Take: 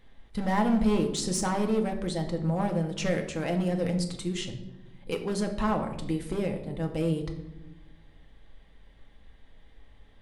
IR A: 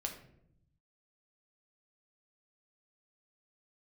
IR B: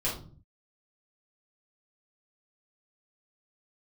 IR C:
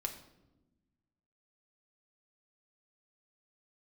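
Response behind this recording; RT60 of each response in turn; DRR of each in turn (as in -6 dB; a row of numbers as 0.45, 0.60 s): C; 0.75, 0.45, 1.0 s; 2.0, -7.0, 3.5 dB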